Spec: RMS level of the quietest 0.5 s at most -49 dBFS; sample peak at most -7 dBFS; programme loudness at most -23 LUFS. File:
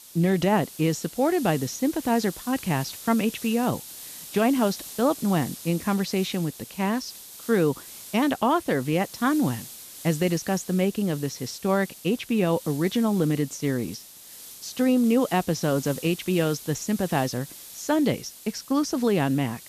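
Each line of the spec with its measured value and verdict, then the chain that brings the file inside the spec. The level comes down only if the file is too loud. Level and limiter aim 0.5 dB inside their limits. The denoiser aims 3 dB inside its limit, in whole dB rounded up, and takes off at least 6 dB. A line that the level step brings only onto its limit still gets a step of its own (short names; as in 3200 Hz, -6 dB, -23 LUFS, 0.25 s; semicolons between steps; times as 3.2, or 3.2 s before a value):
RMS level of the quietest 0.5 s -45 dBFS: fail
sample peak -9.5 dBFS: OK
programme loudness -25.5 LUFS: OK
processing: denoiser 7 dB, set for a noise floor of -45 dBFS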